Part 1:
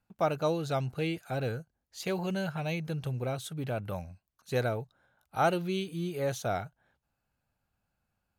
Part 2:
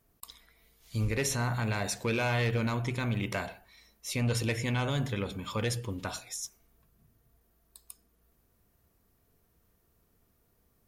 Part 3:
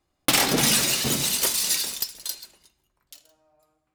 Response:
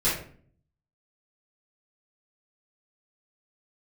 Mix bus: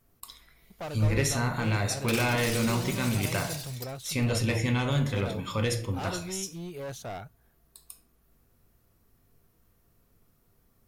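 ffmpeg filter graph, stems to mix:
-filter_complex "[0:a]volume=30.5dB,asoftclip=hard,volume=-30.5dB,adelay=600,volume=-3.5dB[link_01];[1:a]volume=0.5dB,asplit=2[link_02][link_03];[link_03]volume=-16dB[link_04];[2:a]adelay=1800,volume=-15dB[link_05];[3:a]atrim=start_sample=2205[link_06];[link_04][link_06]afir=irnorm=-1:irlink=0[link_07];[link_01][link_02][link_05][link_07]amix=inputs=4:normalize=0"

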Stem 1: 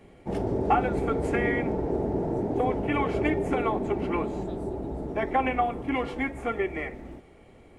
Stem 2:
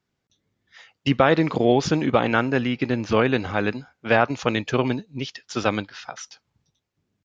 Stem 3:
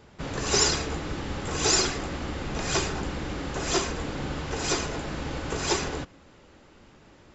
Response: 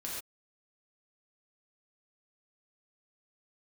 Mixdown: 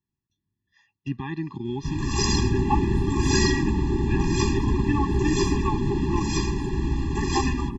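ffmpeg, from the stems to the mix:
-filter_complex "[0:a]adelay=2000,volume=0.5dB[link_01];[1:a]volume=-12.5dB[link_02];[2:a]adelay=1650,volume=0dB[link_03];[link_01][link_02][link_03]amix=inputs=3:normalize=0,lowshelf=frequency=190:gain=9,afftfilt=real='re*eq(mod(floor(b*sr/1024/400),2),0)':imag='im*eq(mod(floor(b*sr/1024/400),2),0)':win_size=1024:overlap=0.75"

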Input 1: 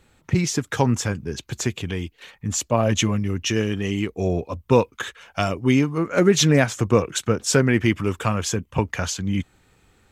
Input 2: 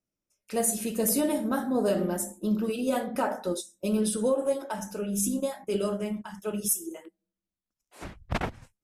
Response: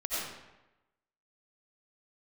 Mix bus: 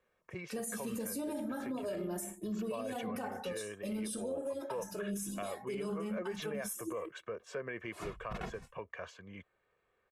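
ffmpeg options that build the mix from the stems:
-filter_complex "[0:a]acrossover=split=280 2600:gain=0.112 1 0.0794[link_01][link_02][link_03];[link_01][link_02][link_03]amix=inputs=3:normalize=0,aecho=1:1:1.8:0.66,volume=-14.5dB[link_04];[1:a]acompressor=threshold=-31dB:ratio=2,asplit=2[link_05][link_06];[link_06]adelay=2.3,afreqshift=0.35[link_07];[link_05][link_07]amix=inputs=2:normalize=1,volume=1dB[link_08];[link_04][link_08]amix=inputs=2:normalize=0,alimiter=level_in=6.5dB:limit=-24dB:level=0:latency=1:release=73,volume=-6.5dB"

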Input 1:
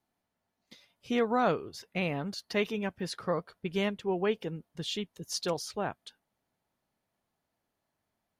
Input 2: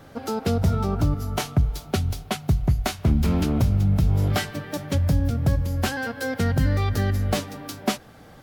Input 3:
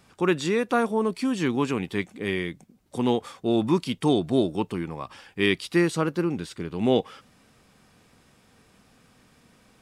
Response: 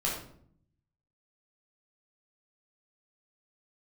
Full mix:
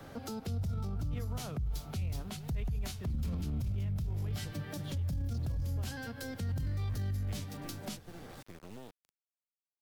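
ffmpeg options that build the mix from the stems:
-filter_complex "[0:a]bass=frequency=250:gain=-3,treble=frequency=4000:gain=-11,aeval=exprs='sgn(val(0))*max(abs(val(0))-0.00335,0)':channel_layout=same,volume=-3.5dB,asplit=2[link_01][link_02];[1:a]volume=-2dB[link_03];[2:a]acompressor=threshold=-31dB:ratio=8,acrusher=bits=4:dc=4:mix=0:aa=0.000001,adelay=1900,volume=-12dB[link_04];[link_02]apad=whole_len=516552[link_05];[link_04][link_05]sidechaincompress=threshold=-41dB:ratio=8:attack=5.8:release=748[link_06];[link_01][link_03]amix=inputs=2:normalize=0,acrossover=split=170|3000[link_07][link_08][link_09];[link_08]acompressor=threshold=-42dB:ratio=2[link_10];[link_07][link_10][link_09]amix=inputs=3:normalize=0,alimiter=limit=-24dB:level=0:latency=1:release=28,volume=0dB[link_11];[link_06][link_11]amix=inputs=2:normalize=0,acrossover=split=220[link_12][link_13];[link_13]acompressor=threshold=-46dB:ratio=2[link_14];[link_12][link_14]amix=inputs=2:normalize=0,alimiter=level_in=5dB:limit=-24dB:level=0:latency=1:release=30,volume=-5dB"

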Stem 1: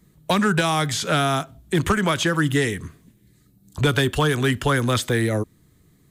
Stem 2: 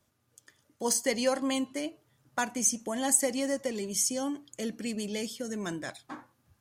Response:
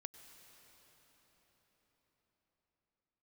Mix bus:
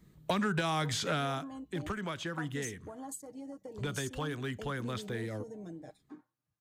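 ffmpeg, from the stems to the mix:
-filter_complex "[0:a]equalizer=frequency=11000:width_type=o:width=1.1:gain=-8.5,volume=-4dB,afade=type=out:start_time=0.95:duration=0.52:silence=0.237137[link_01];[1:a]afwtdn=0.02,aecho=1:1:6.5:0.62,acompressor=threshold=-37dB:ratio=6,volume=-5dB[link_02];[link_01][link_02]amix=inputs=2:normalize=0,acompressor=threshold=-30dB:ratio=3"

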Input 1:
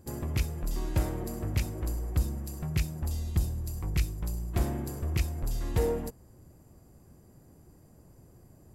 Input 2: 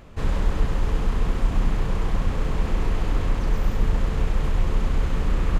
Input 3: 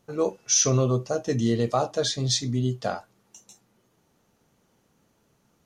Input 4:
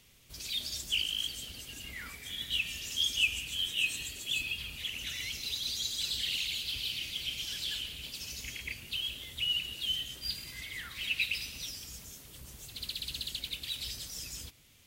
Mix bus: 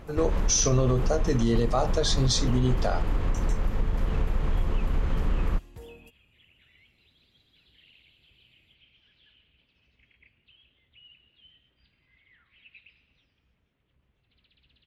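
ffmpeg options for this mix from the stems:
ffmpeg -i stem1.wav -i stem2.wav -i stem3.wav -i stem4.wav -filter_complex "[0:a]volume=-18.5dB[link_01];[1:a]lowpass=frequency=3000:poles=1,acompressor=threshold=-21dB:ratio=6,volume=0.5dB[link_02];[2:a]bandreject=frequency=6600:width=24,volume=2dB[link_03];[3:a]lowpass=frequency=2700:width=0.5412,lowpass=frequency=2700:width=1.3066,adelay=1550,volume=-19dB[link_04];[link_01][link_02][link_03][link_04]amix=inputs=4:normalize=0,alimiter=limit=-14dB:level=0:latency=1:release=56" out.wav

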